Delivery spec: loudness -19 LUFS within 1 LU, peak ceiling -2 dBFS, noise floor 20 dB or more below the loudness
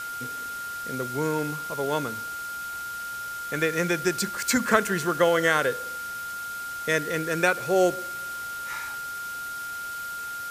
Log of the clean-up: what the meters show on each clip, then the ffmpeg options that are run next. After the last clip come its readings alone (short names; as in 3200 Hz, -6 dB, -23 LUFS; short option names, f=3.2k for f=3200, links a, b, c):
steady tone 1400 Hz; tone level -32 dBFS; noise floor -35 dBFS; noise floor target -47 dBFS; loudness -27.0 LUFS; peak -3.5 dBFS; loudness target -19.0 LUFS
-> -af "bandreject=f=1.4k:w=30"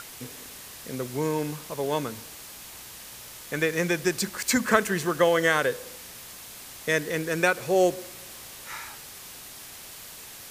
steady tone none; noise floor -44 dBFS; noise floor target -46 dBFS
-> -af "afftdn=nr=6:nf=-44"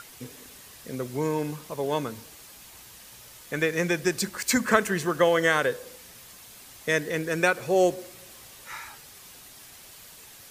noise floor -49 dBFS; loudness -25.5 LUFS; peak -3.5 dBFS; loudness target -19.0 LUFS
-> -af "volume=6.5dB,alimiter=limit=-2dB:level=0:latency=1"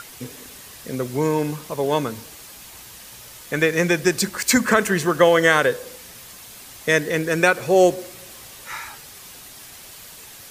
loudness -19.5 LUFS; peak -2.0 dBFS; noise floor -42 dBFS